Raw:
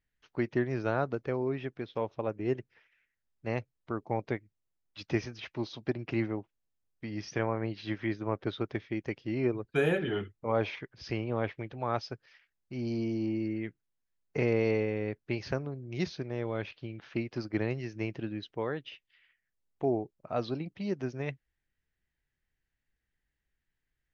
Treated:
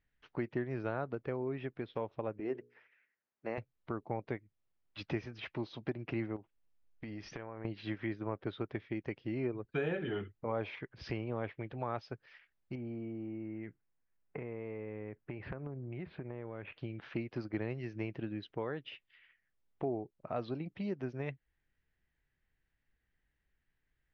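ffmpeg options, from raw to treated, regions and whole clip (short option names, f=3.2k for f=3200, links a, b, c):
-filter_complex "[0:a]asettb=1/sr,asplit=3[a][b][c];[a]atrim=end=2.404[d];[b]atrim=start=2.4:end=3.58,asetpts=PTS-STARTPTS,afade=t=in:d=0.004:c=qsin,afade=t=out:st=1.176:d=0.004:c=qsin,highpass=250,equalizer=f=3.3k:w=1.6:g=-5.5,bandreject=f=60:t=h:w=6,bandreject=f=120:t=h:w=6,bandreject=f=180:t=h:w=6,bandreject=f=240:t=h:w=6,bandreject=f=300:t=h:w=6,bandreject=f=360:t=h:w=6,bandreject=f=420:t=h:w=6,bandreject=f=480:t=h:w=6[e];[c]atrim=start=3.576[f];[d][e]acrossfade=d=0.004:c1=hsin:c2=qsin[g];[g][f]acrossfade=d=0.004:c1=qsin:c2=hsin,asettb=1/sr,asplit=3[h][i][j];[h]atrim=end=6.364[k];[i]atrim=start=6.36:end=7.65,asetpts=PTS-STARTPTS,afade=t=in:d=0.004:c=qsin,afade=t=out:st=1.286:d=0.004:c=qsin,acompressor=threshold=-41dB:ratio=6:attack=3.2:release=140:knee=1:detection=peak,asubboost=boost=11:cutoff=53[l];[j]atrim=start=7.646[m];[k][l]acrossfade=d=0.004:c1=hsin:c2=qsin[n];[n][m]acrossfade=d=0.004:c1=qsin:c2=hsin,asettb=1/sr,asplit=3[o][p][q];[o]atrim=end=12.754[r];[p]atrim=start=12.75:end=16.78,asetpts=PTS-STARTPTS,afade=t=in:d=0.004:c=qsin,afade=t=out:st=4.026:d=0.004:c=qsin,lowpass=f=2.5k:w=0.5412,lowpass=f=2.5k:w=1.3066,acompressor=threshold=-39dB:ratio=6:attack=3.2:release=140:knee=1:detection=peak[s];[q]atrim=start=16.776[t];[r][s]acrossfade=d=0.004:c1=hsin:c2=qsin[u];[u][t]acrossfade=d=0.004:c1=qsin:c2=hsin,lowpass=3.2k,acompressor=threshold=-43dB:ratio=2,volume=3dB"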